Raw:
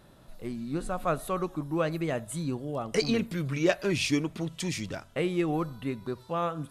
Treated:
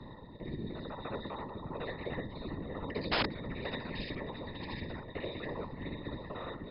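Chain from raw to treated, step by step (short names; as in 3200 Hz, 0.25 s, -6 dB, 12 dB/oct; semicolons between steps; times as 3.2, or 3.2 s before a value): local time reversal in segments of 50 ms; low shelf 98 Hz +5 dB; reverse; upward compressor, threshold -39 dBFS; reverse; octave resonator A#, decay 0.23 s; on a send: swung echo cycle 0.817 s, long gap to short 3:1, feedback 39%, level -16.5 dB; on the sum: wrapped overs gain 27 dB; whisperiser; brick-wall FIR low-pass 5200 Hz; spectral compressor 2:1; gain +3 dB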